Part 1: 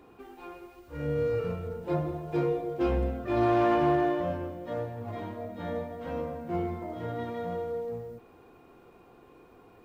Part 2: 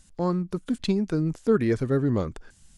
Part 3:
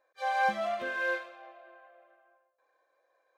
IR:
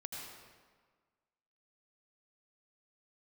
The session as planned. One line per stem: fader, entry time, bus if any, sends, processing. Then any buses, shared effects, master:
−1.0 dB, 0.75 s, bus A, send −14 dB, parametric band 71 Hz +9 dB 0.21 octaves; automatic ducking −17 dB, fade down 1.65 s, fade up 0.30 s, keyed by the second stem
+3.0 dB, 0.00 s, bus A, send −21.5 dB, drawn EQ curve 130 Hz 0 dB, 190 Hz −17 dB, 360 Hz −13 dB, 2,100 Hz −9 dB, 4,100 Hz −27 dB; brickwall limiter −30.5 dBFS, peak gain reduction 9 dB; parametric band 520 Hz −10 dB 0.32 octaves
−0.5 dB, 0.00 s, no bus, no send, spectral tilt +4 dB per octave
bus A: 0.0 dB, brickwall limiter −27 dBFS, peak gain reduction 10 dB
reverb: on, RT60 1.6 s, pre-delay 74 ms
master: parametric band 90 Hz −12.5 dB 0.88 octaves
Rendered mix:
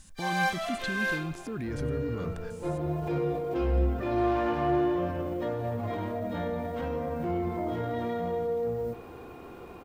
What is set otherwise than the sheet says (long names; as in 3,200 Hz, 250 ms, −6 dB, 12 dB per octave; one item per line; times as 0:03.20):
stem 1 −1.0 dB → +9.0 dB
stem 2: missing drawn EQ curve 130 Hz 0 dB, 190 Hz −17 dB, 360 Hz −13 dB, 2,100 Hz −9 dB, 4,100 Hz −27 dB
master: missing parametric band 90 Hz −12.5 dB 0.88 octaves